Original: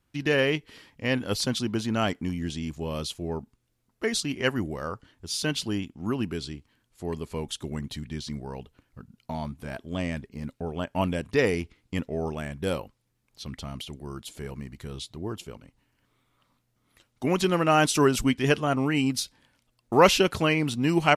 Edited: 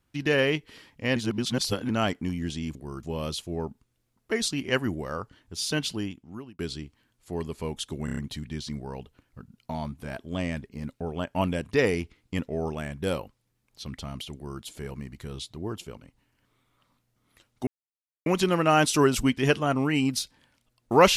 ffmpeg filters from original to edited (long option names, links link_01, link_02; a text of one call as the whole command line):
ffmpeg -i in.wav -filter_complex "[0:a]asplit=11[link_01][link_02][link_03][link_04][link_05][link_06][link_07][link_08][link_09][link_10][link_11];[link_01]atrim=end=1.162[link_12];[link_02]atrim=start=1.158:end=1.892,asetpts=PTS-STARTPTS,areverse[link_13];[link_03]atrim=start=1.888:end=2.752[link_14];[link_04]atrim=start=13.938:end=14.222[link_15];[link_05]atrim=start=2.748:end=6.31,asetpts=PTS-STARTPTS,afade=type=out:start_time=2.802:duration=0.76[link_16];[link_06]atrim=start=6.31:end=7.802,asetpts=PTS-STARTPTS,afade=type=in:duration=0.004:curve=hsin[link_17];[link_07]atrim=start=7.768:end=7.802[link_18];[link_08]atrim=start=7.768:end=7.802[link_19];[link_09]atrim=start=7.768:end=7.802[link_20];[link_10]atrim=start=7.768:end=17.27,asetpts=PTS-STARTPTS,afade=type=out:start_time=9.498:duration=0.004:curve=hsin,apad=pad_dur=0.59[link_21];[link_11]atrim=start=17.27,asetpts=PTS-STARTPTS,afade=type=in:duration=0.004:curve=hsin[link_22];[link_12][link_13]acrossfade=duration=0.004:curve1=hsin:curve2=hsin[link_23];[link_23][link_14]acrossfade=duration=0.004:curve1=hsin:curve2=hsin[link_24];[link_24][link_15]acrossfade=duration=0.004:curve1=hsin:curve2=hsin[link_25];[link_16][link_17]concat=n=2:v=0:a=1[link_26];[link_25][link_26]acrossfade=duration=0.004:curve1=hsin:curve2=hsin[link_27];[link_27][link_18]acrossfade=duration=0.004:curve1=hsin:curve2=hsin[link_28];[link_28][link_19]acrossfade=duration=0.004:curve1=hsin:curve2=hsin[link_29];[link_29][link_20]acrossfade=duration=0.004:curve1=hsin:curve2=hsin[link_30];[link_21][link_22]concat=n=2:v=0:a=1[link_31];[link_30][link_31]acrossfade=duration=0.004:curve1=hsin:curve2=hsin" out.wav